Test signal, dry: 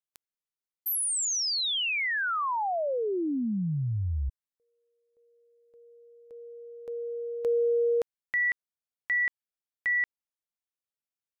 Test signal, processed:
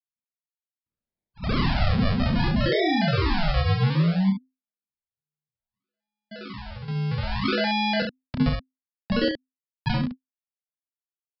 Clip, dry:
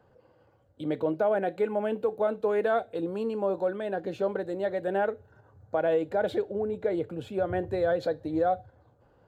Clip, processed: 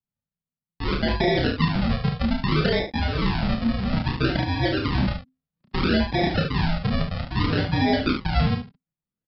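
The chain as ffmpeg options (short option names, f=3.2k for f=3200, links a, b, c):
-af "agate=range=-42dB:threshold=-50dB:ratio=16:release=25:detection=peak,lowshelf=f=77:g=8.5,acompressor=threshold=-30dB:ratio=6:attack=49:release=68:knee=6,aresample=11025,acrusher=samples=13:mix=1:aa=0.000001:lfo=1:lforange=13:lforate=0.61,aresample=44100,afreqshift=-260,aecho=1:1:31|72:0.668|0.473,volume=7dB"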